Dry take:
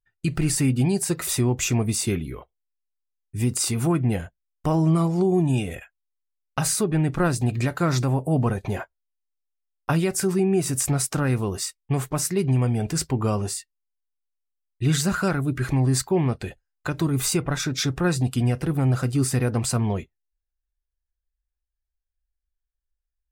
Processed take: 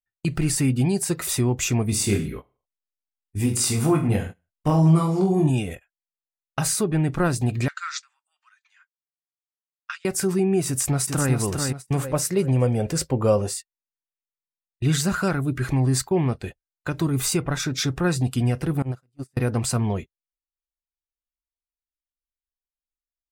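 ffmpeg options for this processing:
-filter_complex "[0:a]asettb=1/sr,asplit=3[a][b][c];[a]atrim=end=1.904[d];[b]atrim=start=1.9:end=5.5,asetpts=PTS-STARTPTS,afade=t=in:d=0.004:c=qsin,afade=t=out:st=3.596:d=0.004:c=qsin,aecho=1:1:20|43|69.45|99.87|134.8|175.1|221.3:0.631|0.398|0.251|0.158|0.1|0.0631|0.0398,atrim=end_sample=158760[e];[c]atrim=start=5.496[f];[d][e]acrossfade=d=0.004:c1=hsin:c2=qsin[g];[g][f]acrossfade=d=0.004:c1=qsin:c2=hsin,asettb=1/sr,asplit=3[h][i][j];[h]atrim=end=7.684[k];[i]atrim=start=7.68:end=10.05,asetpts=PTS-STARTPTS,afade=t=in:d=0.004:c=qsin,afade=t=out:st=2.366:d=0.004:c=qsin,asuperpass=centerf=3300:order=12:qfactor=0.5[l];[j]atrim=start=10.046[m];[k][l]acrossfade=d=0.004:c1=hsin:c2=qsin[n];[n][m]acrossfade=d=0.004:c1=qsin:c2=hsin,asplit=2[o][p];[p]afade=t=in:st=10.67:d=0.01,afade=t=out:st=11.32:d=0.01,aecho=0:1:400|800|1200|1600:0.595662|0.208482|0.0729686|0.025539[q];[o][q]amix=inputs=2:normalize=0,asettb=1/sr,asplit=3[r][s][t];[r]atrim=end=12.034[u];[s]atrim=start=12.03:end=13.56,asetpts=PTS-STARTPTS,afade=t=in:d=0.004:c=qsin,afade=t=out:st=1.526:d=0.004:c=qsin,equalizer=f=530:w=4.4:g=14[v];[t]atrim=start=13.556[w];[u][v]acrossfade=d=0.004:c1=hsin:c2=qsin[x];[x][w]acrossfade=d=0.004:c1=qsin:c2=hsin,asettb=1/sr,asplit=3[y][z][aa];[y]atrim=end=18.824[ab];[z]atrim=start=18.82:end=19.37,asetpts=PTS-STARTPTS,afade=t=in:d=0.004:c=qsin,afade=t=out:st=0.546:d=0.004:c=qsin,agate=range=-25dB:threshold=-18dB:ratio=16:release=100:detection=peak[ac];[aa]atrim=start=19.366[ad];[ab][ac]acrossfade=d=0.004:c1=hsin:c2=qsin[ae];[ae][ad]acrossfade=d=0.004:c1=qsin:c2=hsin,agate=range=-19dB:threshold=-32dB:ratio=16:detection=peak"

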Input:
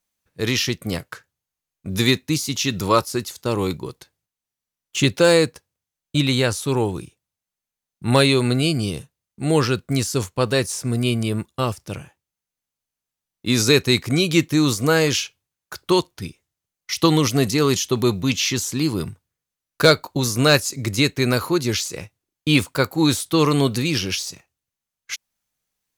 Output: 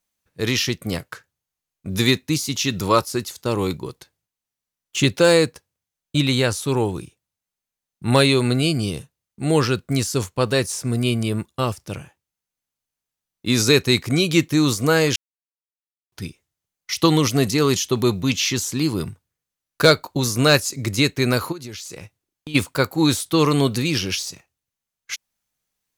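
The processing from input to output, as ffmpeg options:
-filter_complex "[0:a]asplit=3[a][b][c];[a]afade=t=out:st=21.51:d=0.02[d];[b]acompressor=threshold=-31dB:ratio=8:attack=3.2:release=140:knee=1:detection=peak,afade=t=in:st=21.51:d=0.02,afade=t=out:st=22.54:d=0.02[e];[c]afade=t=in:st=22.54:d=0.02[f];[d][e][f]amix=inputs=3:normalize=0,asplit=3[g][h][i];[g]atrim=end=15.16,asetpts=PTS-STARTPTS,afade=t=out:st=15.156:d=0.004:c=hsin[j];[h]atrim=start=15.16:end=16.12,asetpts=PTS-STARTPTS,volume=0[k];[i]atrim=start=16.12,asetpts=PTS-STARTPTS,afade=t=in:d=0.004:c=hsin[l];[j][k][l]concat=n=3:v=0:a=1"

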